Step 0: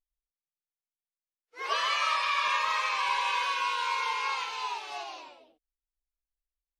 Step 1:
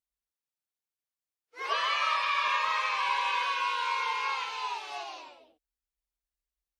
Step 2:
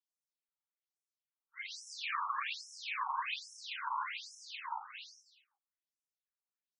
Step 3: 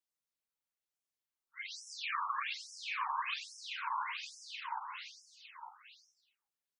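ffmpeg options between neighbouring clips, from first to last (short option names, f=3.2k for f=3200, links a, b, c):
-filter_complex "[0:a]highpass=60,acrossover=split=4500[a][b];[b]acompressor=threshold=-49dB:ratio=4:attack=1:release=60[c];[a][c]amix=inputs=2:normalize=0,asubboost=boost=2.5:cutoff=96"
-af "aeval=exprs='clip(val(0),-1,0.0178)':c=same,afftfilt=real='hypot(re,im)*cos(2*PI*random(0))':imag='hypot(re,im)*sin(2*PI*random(1))':win_size=512:overlap=0.75,afftfilt=real='re*between(b*sr/1024,990*pow(7500/990,0.5+0.5*sin(2*PI*1.2*pts/sr))/1.41,990*pow(7500/990,0.5+0.5*sin(2*PI*1.2*pts/sr))*1.41)':imag='im*between(b*sr/1024,990*pow(7500/990,0.5+0.5*sin(2*PI*1.2*pts/sr))/1.41,990*pow(7500/990,0.5+0.5*sin(2*PI*1.2*pts/sr))*1.41)':win_size=1024:overlap=0.75,volume=4dB"
-af "aecho=1:1:907:0.335"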